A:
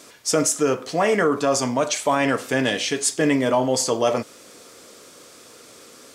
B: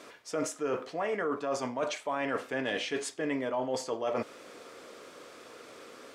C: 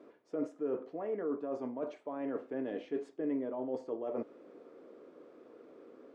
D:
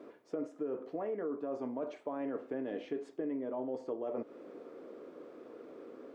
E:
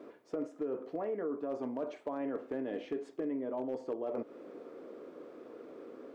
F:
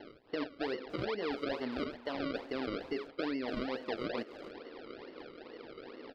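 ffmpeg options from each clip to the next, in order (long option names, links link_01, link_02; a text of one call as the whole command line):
ffmpeg -i in.wav -af "bass=frequency=250:gain=-8,treble=frequency=4000:gain=-14,areverse,acompressor=threshold=-30dB:ratio=5,areverse" out.wav
ffmpeg -i in.wav -af "bandpass=frequency=320:width_type=q:width=1.5:csg=0" out.wav
ffmpeg -i in.wav -af "acompressor=threshold=-39dB:ratio=6,volume=5dB" out.wav
ffmpeg -i in.wav -af "volume=29dB,asoftclip=hard,volume=-29dB,volume=1dB" out.wav
ffmpeg -i in.wav -filter_complex "[0:a]acrusher=samples=35:mix=1:aa=0.000001:lfo=1:lforange=35:lforate=2.3,aresample=11025,aresample=44100,asplit=2[link_01][link_02];[link_02]adelay=290,highpass=300,lowpass=3400,asoftclip=type=hard:threshold=-35dB,volume=-11dB[link_03];[link_01][link_03]amix=inputs=2:normalize=0" out.wav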